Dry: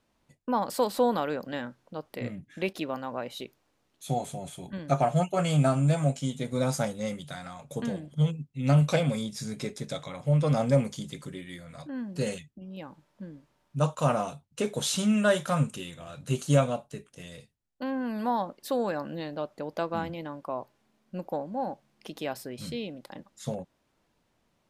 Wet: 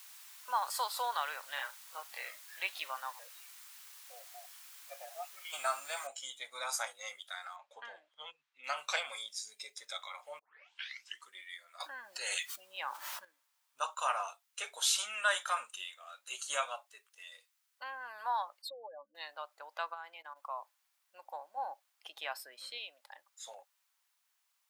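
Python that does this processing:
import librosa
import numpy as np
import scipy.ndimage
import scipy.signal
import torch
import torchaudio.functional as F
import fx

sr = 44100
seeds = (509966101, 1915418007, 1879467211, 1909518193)

y = fx.doubler(x, sr, ms=23.0, db=-2.5, at=(1.55, 2.6))
y = fx.vowel_held(y, sr, hz=4.7, at=(3.11, 5.52), fade=0.02)
y = fx.noise_floor_step(y, sr, seeds[0], at_s=6.07, before_db=-45, after_db=-70, tilt_db=0.0)
y = fx.lowpass(y, sr, hz=3500.0, slope=12, at=(7.56, 8.64))
y = fx.peak_eq(y, sr, hz=1300.0, db=-13.0, octaves=1.2, at=(9.35, 9.77))
y = fx.env_flatten(y, sr, amount_pct=70, at=(11.8, 13.25))
y = fx.spec_expand(y, sr, power=3.1, at=(18.62, 19.15))
y = fx.level_steps(y, sr, step_db=13, at=(19.93, 20.35), fade=0.02)
y = fx.low_shelf(y, sr, hz=420.0, db=10.0, at=(21.57, 22.78))
y = fx.edit(y, sr, fx.tape_start(start_s=10.39, length_s=0.89), tone=tone)
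y = fx.noise_reduce_blind(y, sr, reduce_db=9)
y = scipy.signal.sosfilt(scipy.signal.butter(4, 940.0, 'highpass', fs=sr, output='sos'), y)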